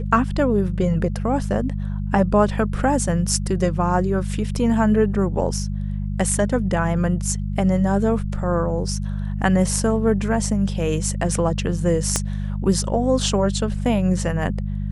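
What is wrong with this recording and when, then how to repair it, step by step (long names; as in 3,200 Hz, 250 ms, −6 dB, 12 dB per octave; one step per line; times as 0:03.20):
mains hum 50 Hz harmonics 4 −25 dBFS
0:12.16: click −5 dBFS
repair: click removal
hum removal 50 Hz, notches 4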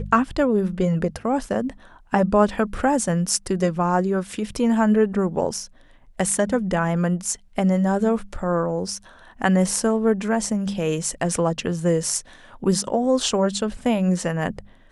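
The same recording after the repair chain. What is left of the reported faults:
0:12.16: click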